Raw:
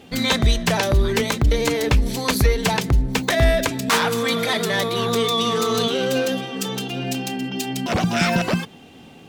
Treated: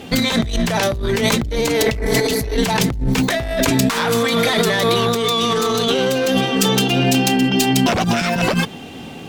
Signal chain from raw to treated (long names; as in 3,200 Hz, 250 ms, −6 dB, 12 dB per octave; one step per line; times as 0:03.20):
healed spectral selection 0:01.84–0:02.53, 270–2,500 Hz before
tube saturation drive 12 dB, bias 0.35
compressor whose output falls as the input rises −26 dBFS, ratio −1
level +8.5 dB